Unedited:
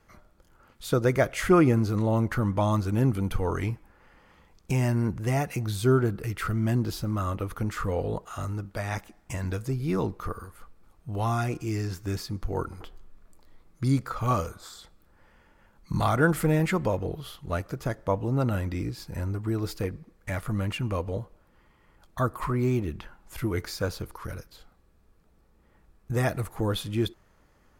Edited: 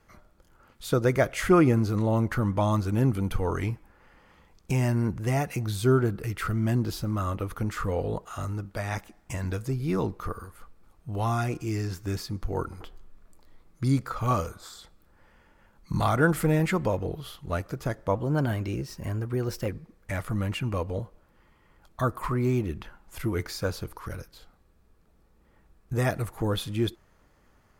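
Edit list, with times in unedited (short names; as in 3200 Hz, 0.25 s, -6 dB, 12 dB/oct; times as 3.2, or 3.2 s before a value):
18.15–19.87 speed 112%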